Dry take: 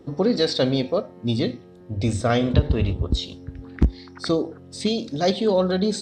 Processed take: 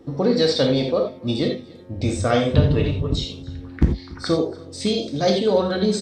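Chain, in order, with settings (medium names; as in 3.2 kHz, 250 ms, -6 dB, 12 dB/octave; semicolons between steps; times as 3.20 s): 2.58–3.15 s: comb 6.9 ms, depth 66%; delay 286 ms -22.5 dB; gated-style reverb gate 110 ms flat, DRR 2 dB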